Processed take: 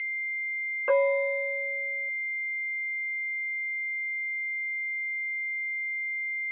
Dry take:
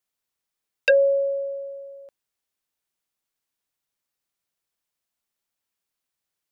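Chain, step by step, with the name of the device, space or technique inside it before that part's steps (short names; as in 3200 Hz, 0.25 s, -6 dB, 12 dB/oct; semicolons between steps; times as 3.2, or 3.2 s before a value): toy sound module (decimation joined by straight lines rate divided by 6×; pulse-width modulation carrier 2100 Hz; speaker cabinet 570–3600 Hz, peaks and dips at 750 Hz -5 dB, 1300 Hz +6 dB, 2000 Hz +4 dB, 2800 Hz +8 dB); gain -1.5 dB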